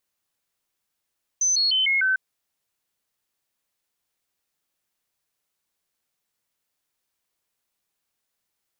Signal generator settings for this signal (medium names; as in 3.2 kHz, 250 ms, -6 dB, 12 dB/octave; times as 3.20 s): stepped sine 6.12 kHz down, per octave 2, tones 5, 0.15 s, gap 0.00 s -18 dBFS